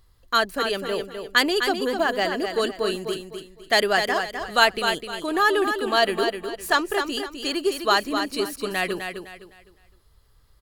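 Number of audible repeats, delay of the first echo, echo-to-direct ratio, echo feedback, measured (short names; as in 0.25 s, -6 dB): 3, 0.255 s, -6.5 dB, 31%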